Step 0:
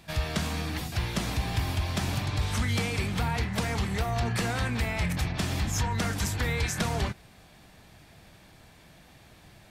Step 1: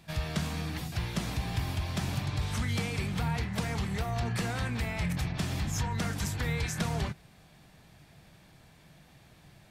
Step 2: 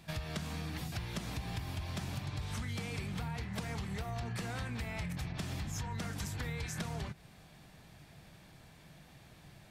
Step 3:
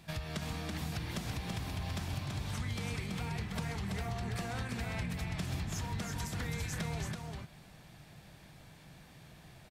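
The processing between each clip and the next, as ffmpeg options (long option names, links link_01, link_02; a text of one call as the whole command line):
ffmpeg -i in.wav -af "equalizer=frequency=150:width_type=o:width=0.5:gain=6.5,volume=-4.5dB" out.wav
ffmpeg -i in.wav -af "acompressor=threshold=-36dB:ratio=6" out.wav
ffmpeg -i in.wav -af "aecho=1:1:331:0.631" out.wav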